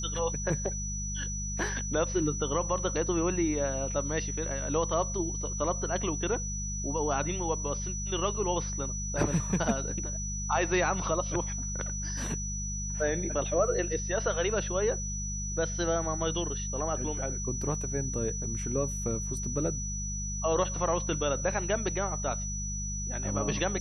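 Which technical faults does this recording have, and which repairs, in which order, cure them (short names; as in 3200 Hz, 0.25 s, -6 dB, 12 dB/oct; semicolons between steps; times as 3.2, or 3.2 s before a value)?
hum 50 Hz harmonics 4 -36 dBFS
tone 5900 Hz -36 dBFS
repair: de-hum 50 Hz, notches 4; notch 5900 Hz, Q 30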